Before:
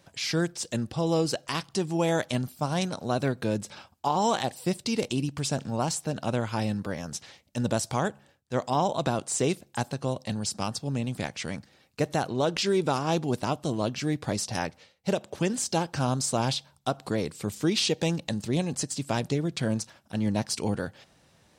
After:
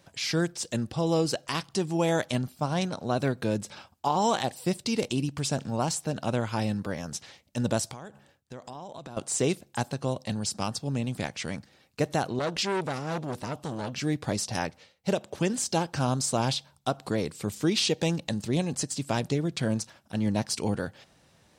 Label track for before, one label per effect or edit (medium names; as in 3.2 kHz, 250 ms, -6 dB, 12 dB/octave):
2.380000	3.170000	treble shelf 7.5 kHz -8.5 dB
7.900000	9.170000	compression 16:1, threshold -37 dBFS
12.390000	13.930000	transformer saturation saturates under 1.3 kHz